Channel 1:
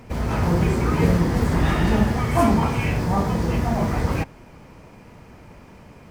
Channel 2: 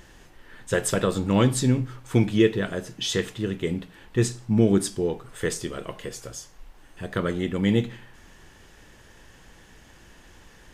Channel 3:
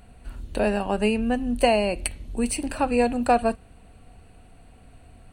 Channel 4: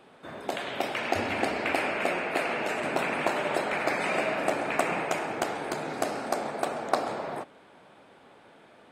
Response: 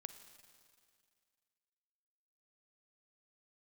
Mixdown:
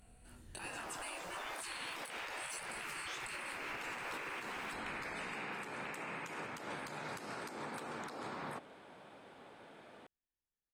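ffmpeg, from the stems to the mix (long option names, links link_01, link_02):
-filter_complex "[0:a]aeval=exprs='sgn(val(0))*max(abs(val(0))-0.0158,0)':channel_layout=same,asubboost=boost=3:cutoff=93,adelay=500,volume=-17.5dB,asplit=2[link_01][link_02];[link_02]volume=-3.5dB[link_03];[1:a]adelay=50,volume=-17.5dB[link_04];[2:a]equalizer=frequency=10000:width=0.71:gain=10.5,flanger=delay=20:depth=3:speed=2.9,asoftclip=type=hard:threshold=-11.5dB,volume=-9dB,asplit=2[link_05][link_06];[3:a]acompressor=threshold=-32dB:ratio=6,adelay=1150,volume=-2dB[link_07];[link_06]apad=whole_len=475443[link_08];[link_04][link_08]sidechaingate=range=-33dB:threshold=-51dB:ratio=16:detection=peak[link_09];[4:a]atrim=start_sample=2205[link_10];[link_03][link_10]afir=irnorm=-1:irlink=0[link_11];[link_01][link_09][link_05][link_07][link_11]amix=inputs=5:normalize=0,afftfilt=real='re*lt(hypot(re,im),0.0447)':imag='im*lt(hypot(re,im),0.0447)':win_size=1024:overlap=0.75,alimiter=level_in=9.5dB:limit=-24dB:level=0:latency=1:release=145,volume=-9.5dB"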